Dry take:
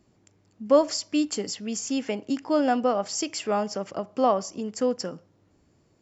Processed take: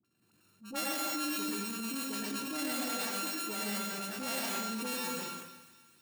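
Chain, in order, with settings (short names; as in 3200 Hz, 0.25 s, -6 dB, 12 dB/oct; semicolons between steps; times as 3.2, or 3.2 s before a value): sample sorter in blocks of 32 samples; HPF 190 Hz 12 dB/oct; bell 790 Hz -12 dB 2.5 oct; dispersion highs, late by 47 ms, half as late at 810 Hz; on a send: thinning echo 0.252 s, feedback 53%, high-pass 760 Hz, level -16 dB; on the sum: plate-style reverb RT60 1 s, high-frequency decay 0.85×, pre-delay 85 ms, DRR -4 dB; in parallel at -1 dB: level quantiser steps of 22 dB; on the sum: transient shaper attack -10 dB, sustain +4 dB; limiter -17.5 dBFS, peak gain reduction 9.5 dB; gain -8 dB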